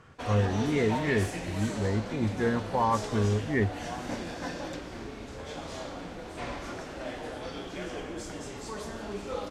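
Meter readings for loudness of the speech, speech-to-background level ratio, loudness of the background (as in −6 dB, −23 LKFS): −29.0 LKFS, 8.0 dB, −37.0 LKFS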